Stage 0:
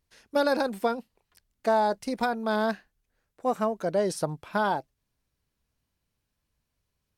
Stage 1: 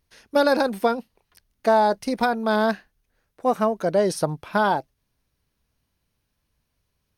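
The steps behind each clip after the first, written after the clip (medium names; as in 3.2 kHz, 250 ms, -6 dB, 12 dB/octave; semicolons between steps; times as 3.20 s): band-stop 7.5 kHz, Q 5.4; trim +5.5 dB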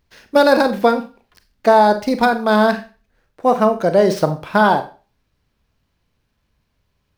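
median filter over 5 samples; Schroeder reverb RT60 0.34 s, combs from 30 ms, DRR 9 dB; trim +6.5 dB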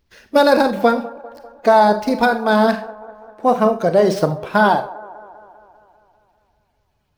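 coarse spectral quantiser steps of 15 dB; feedback echo behind a band-pass 198 ms, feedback 62%, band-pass 660 Hz, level -18 dB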